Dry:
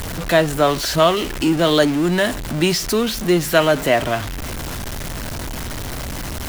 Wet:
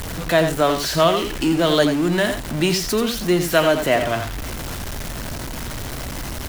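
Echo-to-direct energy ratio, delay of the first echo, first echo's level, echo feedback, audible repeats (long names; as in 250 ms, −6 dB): −8.0 dB, 87 ms, −8.0 dB, repeats not evenly spaced, 1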